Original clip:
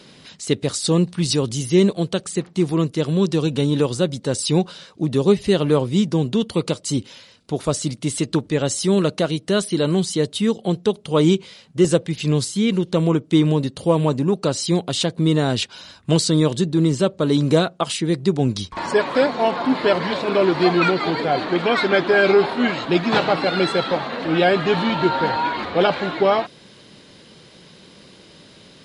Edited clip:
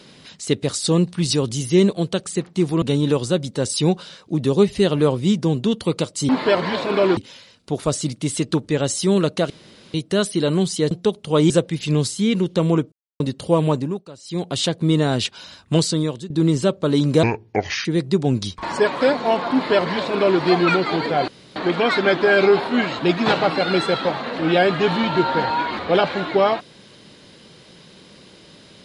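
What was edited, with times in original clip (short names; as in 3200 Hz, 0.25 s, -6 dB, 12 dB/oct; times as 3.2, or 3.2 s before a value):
2.82–3.51 cut
9.31 insert room tone 0.44 s
10.28–10.72 cut
11.31–11.87 cut
13.29–13.57 mute
14.1–14.92 dip -19 dB, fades 0.32 s
16.13–16.67 fade out, to -17 dB
17.6–17.99 speed 63%
19.67–20.55 copy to 6.98
21.42 insert room tone 0.28 s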